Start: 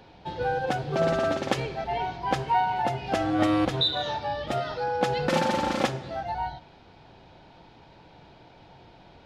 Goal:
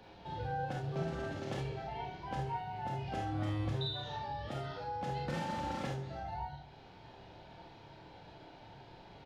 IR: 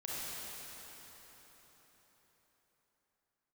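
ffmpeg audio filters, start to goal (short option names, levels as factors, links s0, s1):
-filter_complex "[0:a]acrossover=split=160[s0][s1];[s1]acompressor=threshold=0.00562:ratio=2[s2];[s0][s2]amix=inputs=2:normalize=0,aecho=1:1:28|75:0.473|0.266[s3];[1:a]atrim=start_sample=2205,atrim=end_sample=3087[s4];[s3][s4]afir=irnorm=-1:irlink=0"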